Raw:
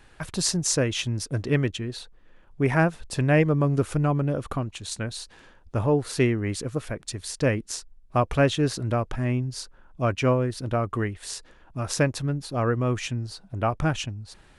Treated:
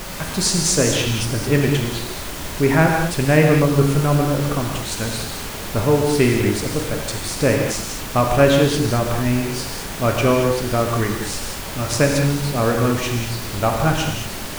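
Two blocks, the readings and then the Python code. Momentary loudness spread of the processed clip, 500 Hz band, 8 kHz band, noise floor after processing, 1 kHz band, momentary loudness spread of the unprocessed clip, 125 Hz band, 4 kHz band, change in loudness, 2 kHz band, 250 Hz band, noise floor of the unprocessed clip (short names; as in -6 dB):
10 LU, +7.5 dB, +8.5 dB, -29 dBFS, +7.5 dB, 13 LU, +5.5 dB, +9.0 dB, +7.0 dB, +8.0 dB, +7.0 dB, -54 dBFS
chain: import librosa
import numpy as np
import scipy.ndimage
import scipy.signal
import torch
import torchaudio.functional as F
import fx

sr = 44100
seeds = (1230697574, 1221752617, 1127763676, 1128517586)

y = fx.dmg_noise_colour(x, sr, seeds[0], colour='pink', level_db=-36.0)
y = fx.rev_gated(y, sr, seeds[1], gate_ms=250, shape='flat', drr_db=1.0)
y = y * 10.0 ** (4.5 / 20.0)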